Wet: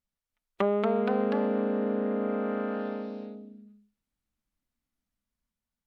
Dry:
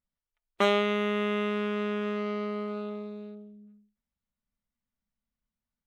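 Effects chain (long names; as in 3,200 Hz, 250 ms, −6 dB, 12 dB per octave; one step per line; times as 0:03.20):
treble cut that deepens with the level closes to 710 Hz, closed at −26.5 dBFS
delay with pitch and tempo change per echo 298 ms, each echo +2 semitones, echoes 3
delay with a high-pass on its return 126 ms, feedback 64%, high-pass 2,700 Hz, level −23 dB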